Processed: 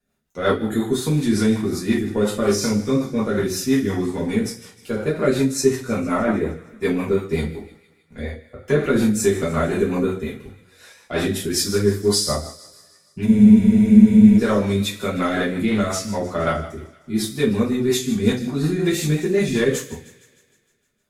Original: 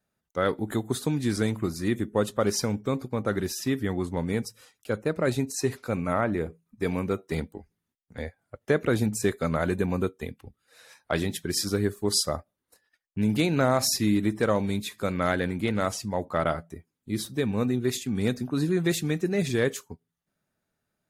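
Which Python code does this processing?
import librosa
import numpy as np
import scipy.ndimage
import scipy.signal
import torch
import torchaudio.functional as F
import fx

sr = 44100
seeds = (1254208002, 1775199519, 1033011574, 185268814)

p1 = 10.0 ** (-20.5 / 20.0) * np.tanh(x / 10.0 ** (-20.5 / 20.0))
p2 = x + F.gain(torch.from_numpy(p1), -6.5).numpy()
p3 = fx.rev_double_slope(p2, sr, seeds[0], early_s=0.44, late_s=1.6, knee_db=-24, drr_db=-7.0)
p4 = fx.rotary(p3, sr, hz=5.5)
p5 = p4 + fx.echo_wet_highpass(p4, sr, ms=154, feedback_pct=60, hz=1600.0, wet_db=-17.0, dry=0)
p6 = fx.spec_freeze(p5, sr, seeds[1], at_s=13.28, hold_s=1.1)
y = F.gain(torch.from_numpy(p6), -2.0).numpy()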